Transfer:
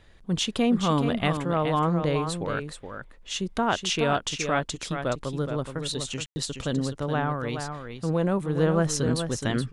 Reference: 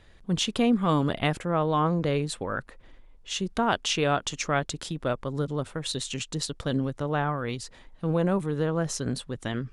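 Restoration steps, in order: room tone fill 6.26–6.36 s; inverse comb 422 ms -7.5 dB; gain correction -4 dB, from 8.55 s

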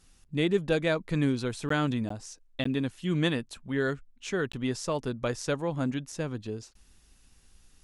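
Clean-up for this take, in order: interpolate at 1.69/2.09/2.64/4.52 s, 14 ms

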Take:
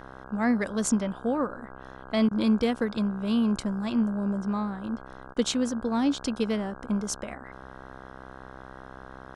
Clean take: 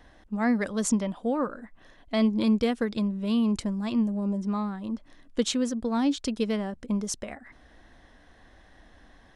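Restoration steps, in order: de-hum 65.2 Hz, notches 25; interpolate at 2.29/5.34 s, 20 ms

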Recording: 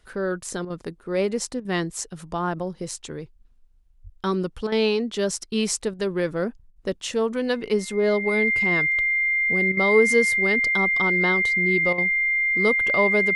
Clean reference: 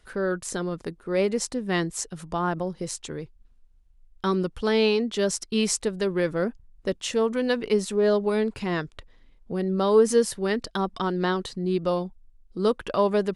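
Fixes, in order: band-stop 2.1 kHz, Q 30; de-plosive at 4.03 s; interpolate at 0.65/1.60/4.67/5.94/6.71/9.72/11.93 s, 49 ms

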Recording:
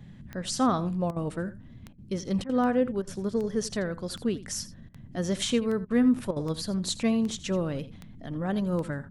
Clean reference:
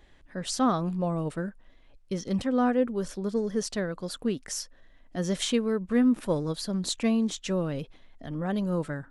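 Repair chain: de-click; interpolate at 1.11/1.93/2.44/3.02/4.89/5.85/6.31 s, 52 ms; noise print and reduce 7 dB; inverse comb 83 ms -16.5 dB

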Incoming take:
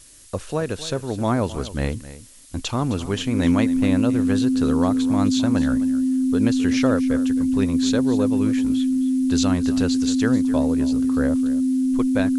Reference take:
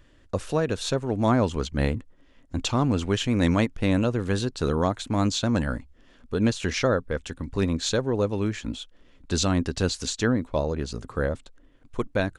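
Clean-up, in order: band-stop 260 Hz, Q 30; noise print and reduce 20 dB; inverse comb 262 ms -15.5 dB

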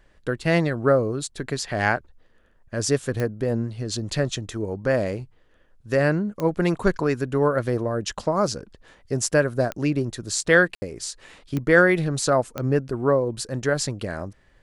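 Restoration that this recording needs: de-click; room tone fill 10.75–10.82 s

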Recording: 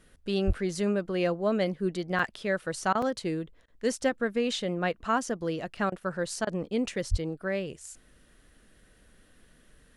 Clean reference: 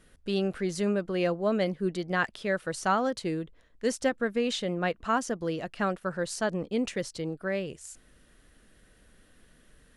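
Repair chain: 0.46–0.58 s: high-pass 140 Hz 24 dB/octave; 7.10–7.22 s: high-pass 140 Hz 24 dB/octave; interpolate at 2.19/3.02/5.77/6.66 s, 3.7 ms; interpolate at 2.93/3.66/5.90/6.45 s, 19 ms

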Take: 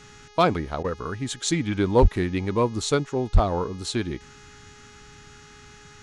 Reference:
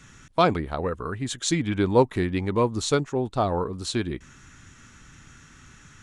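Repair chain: clip repair -8.5 dBFS; de-hum 416.6 Hz, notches 16; 2.01–2.13 s: high-pass 140 Hz 24 dB/octave; 3.33–3.45 s: high-pass 140 Hz 24 dB/octave; interpolate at 0.83 s, 12 ms

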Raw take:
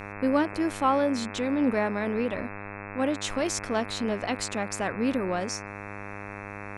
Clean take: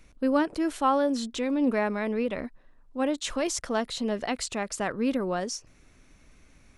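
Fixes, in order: de-hum 101.4 Hz, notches 26

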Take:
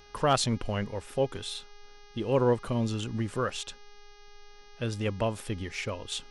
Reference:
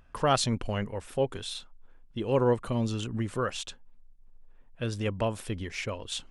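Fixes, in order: clip repair -13.5 dBFS; de-hum 411 Hz, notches 15

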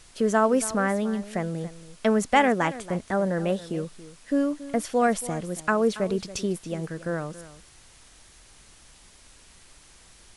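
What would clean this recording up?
noise reduction 17 dB, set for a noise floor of -53 dBFS; inverse comb 279 ms -16 dB

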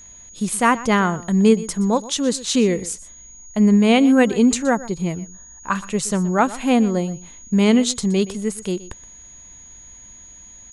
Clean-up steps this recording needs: band-stop 6.7 kHz, Q 30; inverse comb 122 ms -17.5 dB

